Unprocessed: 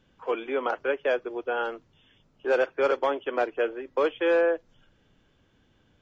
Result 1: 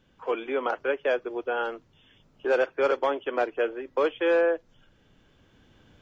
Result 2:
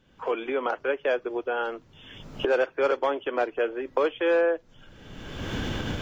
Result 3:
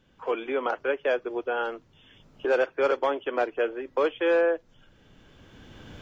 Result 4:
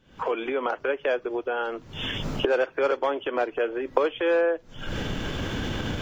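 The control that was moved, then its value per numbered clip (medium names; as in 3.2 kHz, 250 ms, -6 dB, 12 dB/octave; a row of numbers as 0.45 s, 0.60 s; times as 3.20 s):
recorder AGC, rising by: 5.2 dB/s, 35 dB/s, 14 dB/s, 88 dB/s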